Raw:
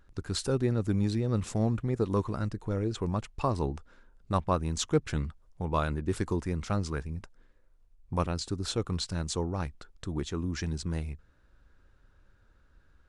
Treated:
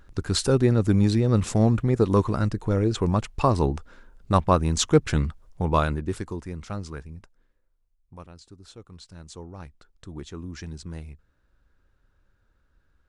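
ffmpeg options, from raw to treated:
ffmpeg -i in.wav -af "volume=18.5dB,afade=type=out:start_time=5.69:duration=0.56:silence=0.281838,afade=type=out:start_time=6.95:duration=1.25:silence=0.266073,afade=type=in:start_time=8.9:duration=1.41:silence=0.298538" out.wav

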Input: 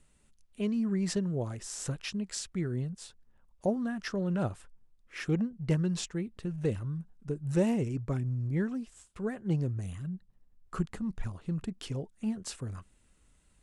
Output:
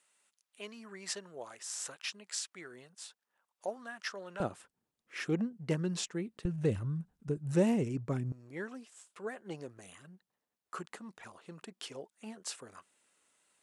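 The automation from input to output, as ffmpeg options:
ffmpeg -i in.wav -af "asetnsamples=nb_out_samples=441:pad=0,asendcmd='4.4 highpass f 220;6.45 highpass f 60;7.37 highpass f 140;8.32 highpass f 500',highpass=790" out.wav

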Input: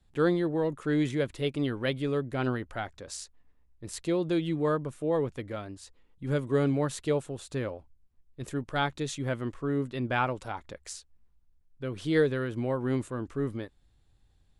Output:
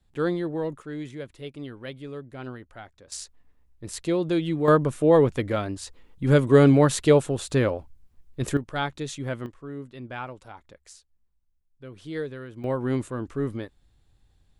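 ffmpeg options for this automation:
ffmpeg -i in.wav -af "asetnsamples=nb_out_samples=441:pad=0,asendcmd='0.82 volume volume -8dB;3.12 volume volume 3.5dB;4.68 volume volume 10.5dB;8.57 volume volume 0.5dB;9.46 volume volume -7.5dB;12.64 volume volume 3dB',volume=-0.5dB" out.wav

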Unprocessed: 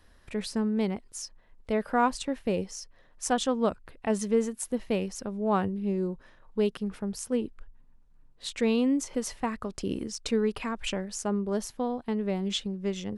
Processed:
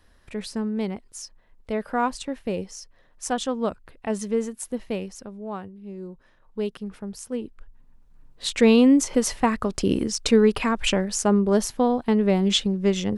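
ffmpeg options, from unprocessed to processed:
ffmpeg -i in.wav -af "volume=22dB,afade=type=out:start_time=4.8:duration=0.93:silence=0.237137,afade=type=in:start_time=5.73:duration=0.9:silence=0.298538,afade=type=in:start_time=7.44:duration=1.18:silence=0.281838" out.wav

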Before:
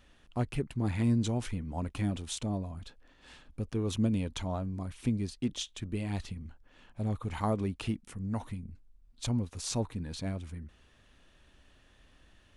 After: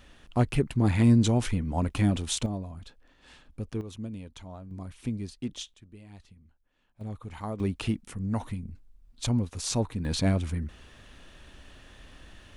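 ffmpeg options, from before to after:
ffmpeg -i in.wav -af "asetnsamples=nb_out_samples=441:pad=0,asendcmd='2.46 volume volume 0dB;3.81 volume volume -9dB;4.71 volume volume -2dB;5.74 volume volume -14.5dB;7.01 volume volume -5dB;7.6 volume volume 4.5dB;10.05 volume volume 11dB',volume=7.5dB" out.wav

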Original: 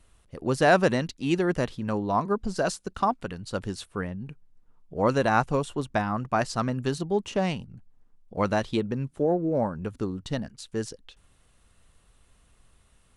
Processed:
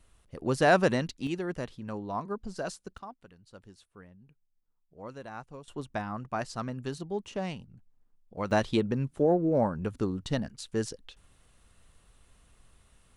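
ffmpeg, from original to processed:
ffmpeg -i in.wav -af "asetnsamples=nb_out_samples=441:pad=0,asendcmd='1.27 volume volume -9dB;2.98 volume volume -20dB;5.68 volume volume -8dB;8.51 volume volume 0dB',volume=-2.5dB" out.wav

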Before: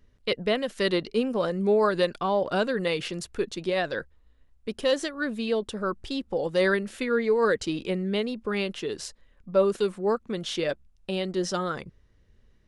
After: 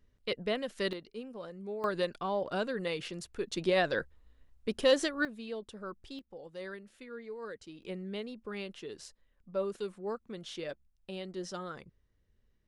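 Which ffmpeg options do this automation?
ffmpeg -i in.wav -af "asetnsamples=nb_out_samples=441:pad=0,asendcmd='0.93 volume volume -17.5dB;1.84 volume volume -8dB;3.52 volume volume -1dB;5.25 volume volume -13.5dB;6.19 volume volume -20dB;7.83 volume volume -12dB',volume=-7.5dB" out.wav

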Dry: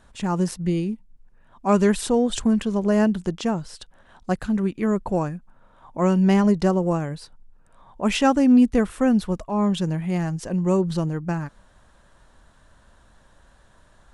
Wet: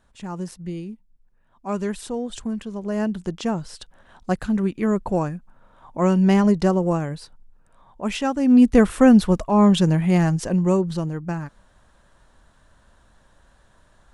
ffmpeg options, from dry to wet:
ffmpeg -i in.wav -af "volume=13.5dB,afade=type=in:start_time=2.81:duration=0.88:silence=0.354813,afade=type=out:start_time=7.1:duration=1.26:silence=0.446684,afade=type=in:start_time=8.36:duration=0.49:silence=0.237137,afade=type=out:start_time=10.29:duration=0.58:silence=0.398107" out.wav

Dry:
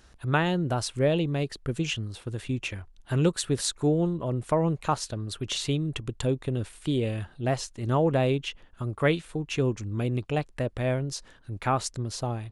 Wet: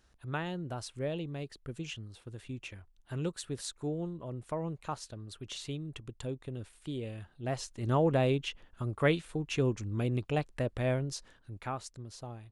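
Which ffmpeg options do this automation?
ffmpeg -i in.wav -af "volume=-3.5dB,afade=type=in:start_time=7.35:duration=0.46:silence=0.398107,afade=type=out:start_time=10.96:duration=0.84:silence=0.316228" out.wav

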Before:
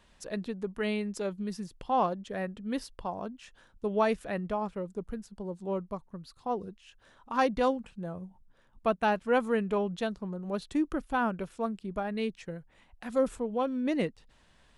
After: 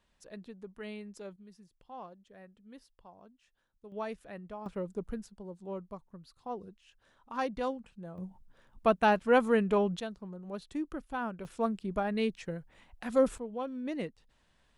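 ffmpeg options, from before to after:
ffmpeg -i in.wav -af "asetnsamples=nb_out_samples=441:pad=0,asendcmd='1.36 volume volume -19dB;3.92 volume volume -11.5dB;4.66 volume volume -0.5dB;5.3 volume volume -7dB;8.18 volume volume 2dB;10 volume volume -7dB;11.45 volume volume 1.5dB;13.38 volume volume -7dB',volume=-11.5dB" out.wav

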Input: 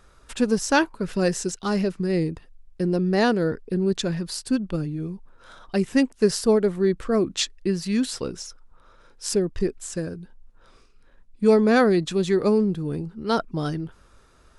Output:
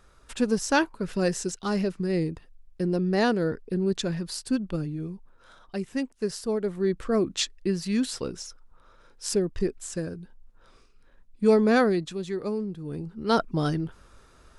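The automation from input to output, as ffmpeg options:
ffmpeg -i in.wav -af "volume=15dB,afade=type=out:start_time=4.94:duration=0.92:silence=0.473151,afade=type=in:start_time=6.5:duration=0.54:silence=0.446684,afade=type=out:start_time=11.75:duration=0.43:silence=0.421697,afade=type=in:start_time=12.78:duration=0.64:silence=0.281838" out.wav

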